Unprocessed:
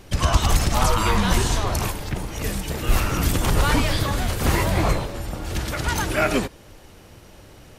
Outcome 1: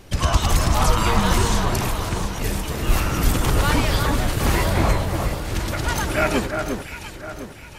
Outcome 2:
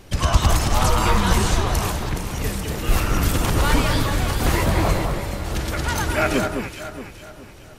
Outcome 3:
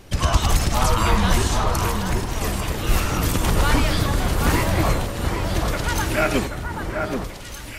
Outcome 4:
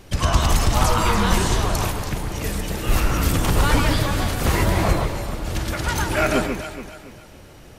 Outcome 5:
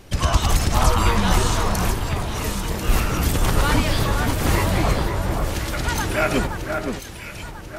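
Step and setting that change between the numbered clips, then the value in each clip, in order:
echo with dull and thin repeats by turns, time: 0.352, 0.21, 0.782, 0.142, 0.521 s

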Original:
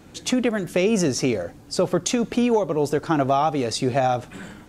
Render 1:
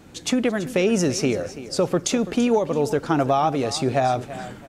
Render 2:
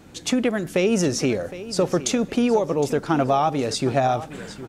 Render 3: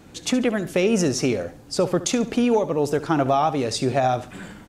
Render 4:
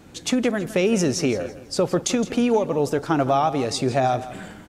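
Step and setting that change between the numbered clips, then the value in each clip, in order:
feedback echo, time: 334, 763, 70, 165 ms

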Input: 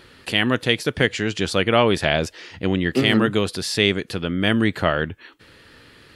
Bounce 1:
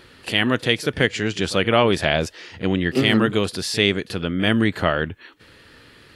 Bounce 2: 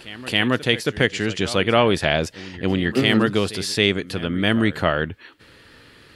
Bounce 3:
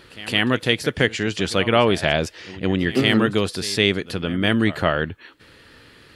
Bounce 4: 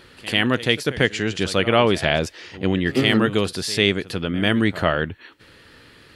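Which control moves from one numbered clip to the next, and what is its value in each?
pre-echo, time: 36, 273, 163, 95 ms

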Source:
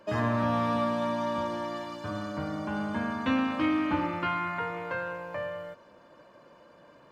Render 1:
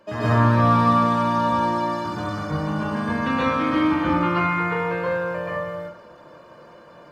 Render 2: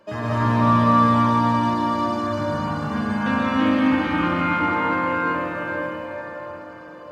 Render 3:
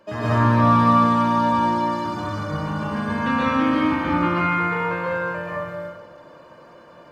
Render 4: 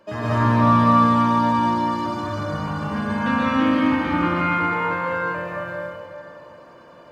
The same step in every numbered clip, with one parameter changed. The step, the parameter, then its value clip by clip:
plate-style reverb, RT60: 0.51, 5.3, 1.1, 2.3 s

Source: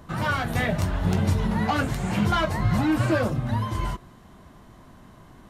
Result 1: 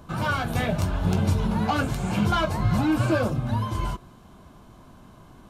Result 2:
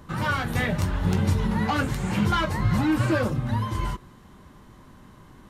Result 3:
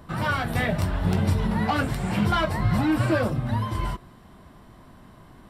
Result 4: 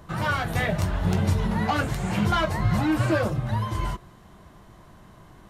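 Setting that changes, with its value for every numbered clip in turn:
notch, frequency: 1900, 680, 6500, 250 Hz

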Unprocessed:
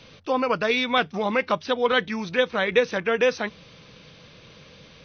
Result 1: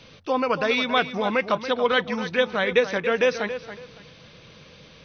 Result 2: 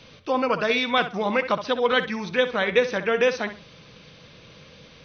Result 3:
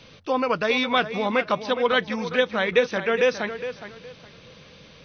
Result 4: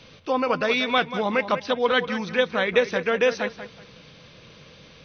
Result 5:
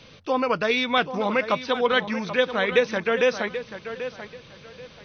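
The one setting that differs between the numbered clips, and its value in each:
tape echo, time: 279, 64, 413, 187, 785 ms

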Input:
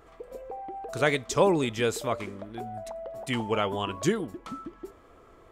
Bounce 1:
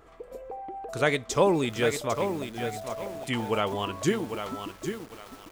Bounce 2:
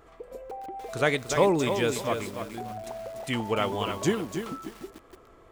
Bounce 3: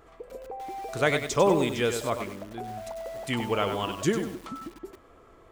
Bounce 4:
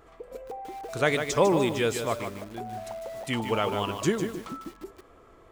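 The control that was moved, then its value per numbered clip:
lo-fi delay, time: 800, 293, 97, 150 ms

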